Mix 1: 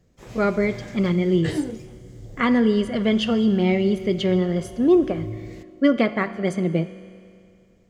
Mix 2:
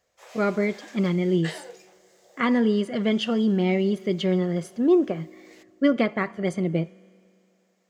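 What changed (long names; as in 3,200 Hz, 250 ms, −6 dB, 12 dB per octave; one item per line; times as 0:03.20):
speech: send −11.5 dB
background: add Butterworth high-pass 530 Hz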